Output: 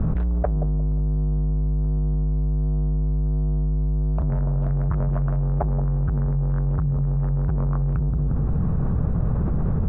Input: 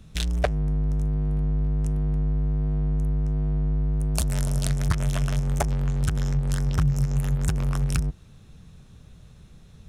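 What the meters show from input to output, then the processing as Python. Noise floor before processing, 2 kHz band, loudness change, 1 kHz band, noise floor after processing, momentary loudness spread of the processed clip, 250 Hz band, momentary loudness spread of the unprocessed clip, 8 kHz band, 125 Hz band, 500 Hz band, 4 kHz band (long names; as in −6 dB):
−50 dBFS, can't be measured, +2.0 dB, +1.0 dB, −22 dBFS, 1 LU, +3.5 dB, 1 LU, below −40 dB, +3.0 dB, +2.0 dB, below −30 dB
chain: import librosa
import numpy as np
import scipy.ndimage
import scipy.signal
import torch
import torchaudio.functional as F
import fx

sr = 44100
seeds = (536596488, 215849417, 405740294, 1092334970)

p1 = scipy.signal.sosfilt(scipy.signal.butter(4, 1200.0, 'lowpass', fs=sr, output='sos'), x)
p2 = p1 + fx.echo_wet_lowpass(p1, sr, ms=177, feedback_pct=34, hz=710.0, wet_db=-11.5, dry=0)
p3 = fx.env_flatten(p2, sr, amount_pct=100)
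y = p3 * 10.0 ** (-2.5 / 20.0)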